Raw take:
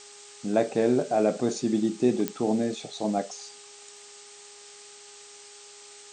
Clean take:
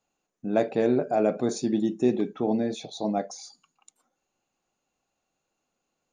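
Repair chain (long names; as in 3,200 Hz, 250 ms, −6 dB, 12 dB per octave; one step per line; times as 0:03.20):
click removal
hum removal 409.7 Hz, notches 3
noise reduction from a noise print 30 dB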